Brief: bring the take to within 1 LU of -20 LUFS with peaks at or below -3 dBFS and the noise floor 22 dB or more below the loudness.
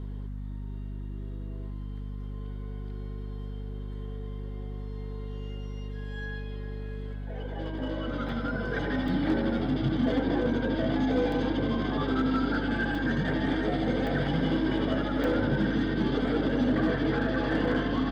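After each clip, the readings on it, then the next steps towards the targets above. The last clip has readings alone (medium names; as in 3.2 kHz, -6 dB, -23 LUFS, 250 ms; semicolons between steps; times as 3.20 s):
dropouts 7; longest dropout 2.4 ms; hum 50 Hz; highest harmonic 250 Hz; hum level -33 dBFS; loudness -30.0 LUFS; peak level -17.0 dBFS; loudness target -20.0 LUFS
-> interpolate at 8.29/9.08/11.32/12.95/14.07/15.24/17.65 s, 2.4 ms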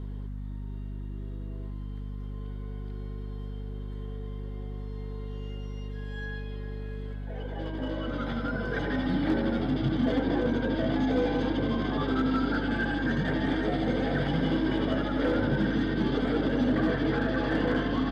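dropouts 0; hum 50 Hz; highest harmonic 250 Hz; hum level -33 dBFS
-> hum notches 50/100/150/200/250 Hz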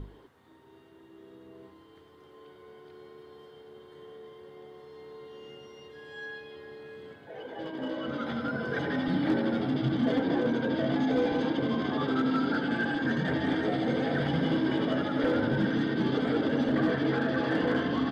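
hum not found; loudness -28.5 LUFS; peak level -17.0 dBFS; loudness target -20.0 LUFS
-> trim +8.5 dB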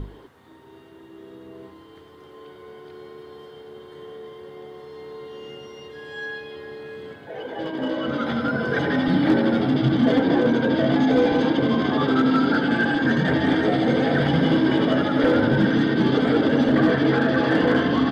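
loudness -20.0 LUFS; peak level -8.5 dBFS; noise floor -47 dBFS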